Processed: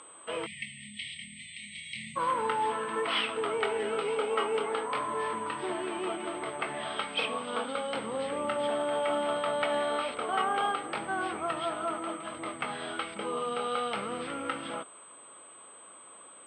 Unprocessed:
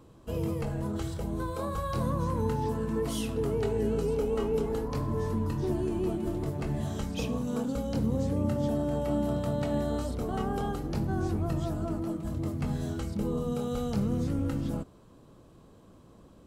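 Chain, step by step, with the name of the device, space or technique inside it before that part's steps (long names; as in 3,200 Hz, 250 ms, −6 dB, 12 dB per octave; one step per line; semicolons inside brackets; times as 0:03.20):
toy sound module (linearly interpolated sample-rate reduction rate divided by 4×; switching amplifier with a slow clock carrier 8,200 Hz; loudspeaker in its box 760–4,900 Hz, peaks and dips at 1,300 Hz +7 dB, 2,200 Hz +7 dB, 3,200 Hz +8 dB)
time-frequency box erased 0:00.46–0:02.17, 240–1,800 Hz
level +8.5 dB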